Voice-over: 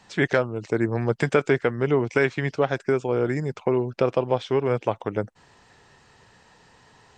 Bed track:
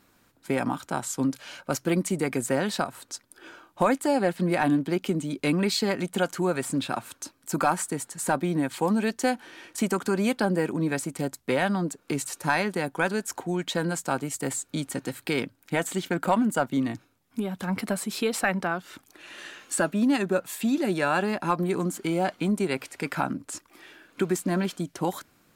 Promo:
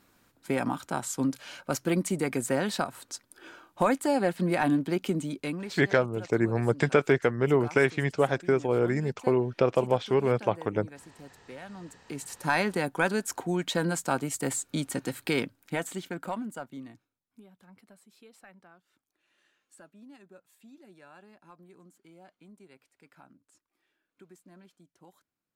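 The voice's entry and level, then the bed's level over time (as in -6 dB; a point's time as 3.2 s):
5.60 s, -2.0 dB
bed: 5.27 s -2 dB
5.86 s -19.5 dB
11.66 s -19.5 dB
12.58 s -0.5 dB
15.38 s -0.5 dB
17.84 s -28.5 dB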